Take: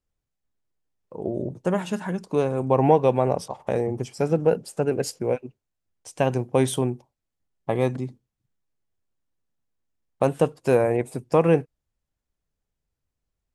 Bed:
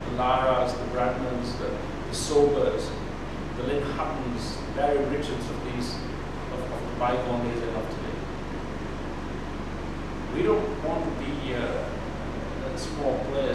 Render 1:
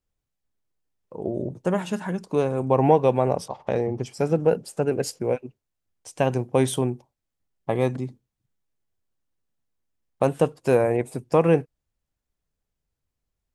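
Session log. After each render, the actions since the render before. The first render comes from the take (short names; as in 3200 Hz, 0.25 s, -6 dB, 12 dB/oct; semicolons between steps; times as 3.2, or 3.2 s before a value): 3.49–4.06 resonant high shelf 6800 Hz -11 dB, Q 1.5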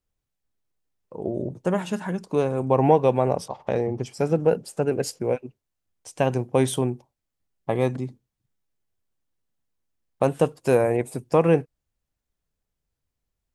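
10.4–11.32 high shelf 6600 Hz +5 dB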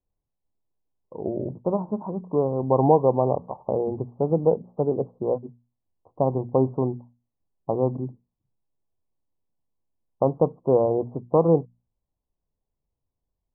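steep low-pass 1100 Hz 72 dB/oct; notches 60/120/180/240 Hz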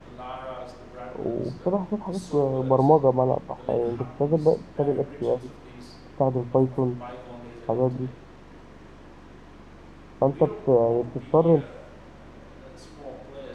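add bed -13.5 dB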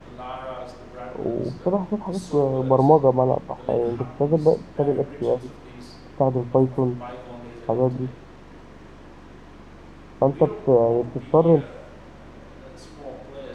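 gain +2.5 dB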